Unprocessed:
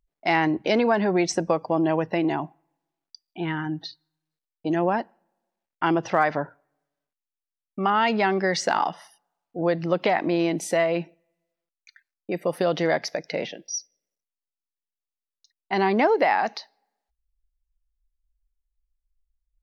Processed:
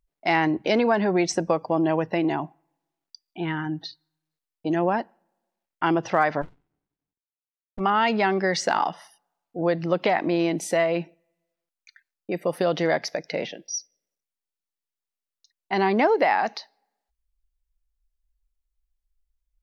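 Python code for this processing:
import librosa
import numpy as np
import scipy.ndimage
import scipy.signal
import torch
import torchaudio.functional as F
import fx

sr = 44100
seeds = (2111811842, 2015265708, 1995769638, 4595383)

y = fx.running_max(x, sr, window=65, at=(6.41, 7.79), fade=0.02)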